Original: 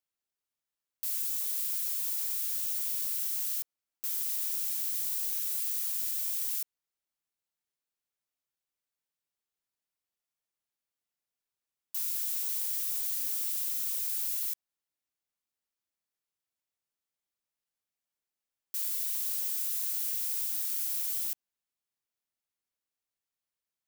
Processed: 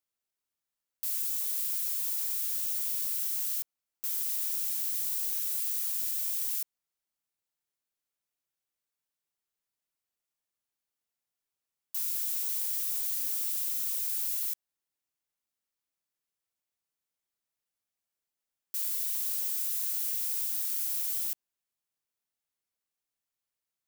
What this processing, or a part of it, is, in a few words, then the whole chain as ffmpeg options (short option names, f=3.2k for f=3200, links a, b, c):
exciter from parts: -filter_complex "[0:a]asplit=2[a][b];[b]highpass=4.9k,asoftclip=type=tanh:threshold=-36dB,volume=-14dB[c];[a][c]amix=inputs=2:normalize=0"